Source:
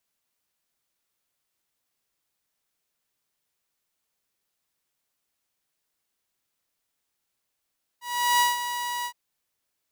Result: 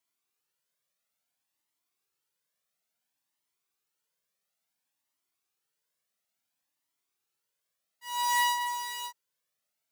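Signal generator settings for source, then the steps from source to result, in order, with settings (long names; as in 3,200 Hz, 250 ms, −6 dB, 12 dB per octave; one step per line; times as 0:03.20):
note with an ADSR envelope saw 968 Hz, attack 390 ms, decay 164 ms, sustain −10.5 dB, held 1.04 s, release 76 ms −15 dBFS
high-pass filter 140 Hz 12 dB per octave
flanger whose copies keep moving one way rising 0.58 Hz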